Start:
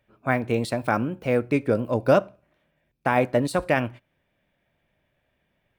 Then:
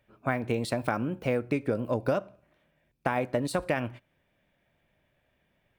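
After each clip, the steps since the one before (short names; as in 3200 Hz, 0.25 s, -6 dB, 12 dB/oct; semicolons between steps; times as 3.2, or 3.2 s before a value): compressor 6:1, threshold -24 dBFS, peak gain reduction 11 dB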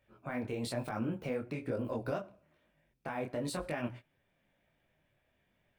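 limiter -22 dBFS, peak gain reduction 10.5 dB; detuned doubles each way 37 cents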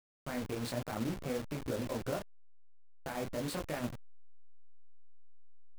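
level-crossing sampler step -37 dBFS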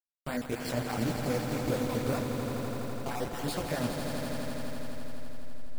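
random spectral dropouts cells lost 27%; swelling echo 83 ms, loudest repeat 5, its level -8.5 dB; gain +4.5 dB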